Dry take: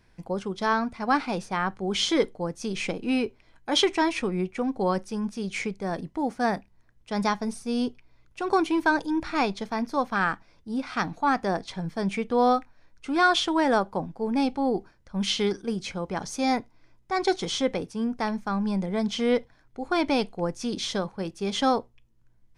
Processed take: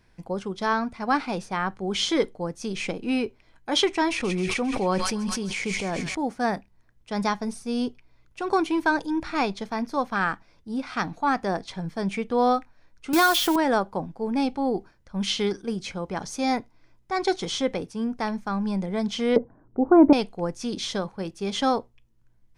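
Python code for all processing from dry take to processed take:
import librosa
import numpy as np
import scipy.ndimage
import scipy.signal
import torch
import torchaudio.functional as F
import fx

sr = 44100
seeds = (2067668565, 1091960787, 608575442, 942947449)

y = fx.chain(x, sr, fx.echo_wet_highpass(ms=134, feedback_pct=72, hz=2500.0, wet_db=-4),
    fx.sustainer(db_per_s=20.0), at=(4.09, 6.15))
y = fx.chain(y, sr, fx.crossing_spikes(level_db=-22.5),
    fx.band_squash(depth_pct=100), at=(13.13, 13.56))
y = fx.chain(y, sr, fx.lowpass(hz=1300.0, slope=24),
    fx.peak_eq(hz=280.0, db=13.0, octaves=2.5), at=(19.36, 20.13))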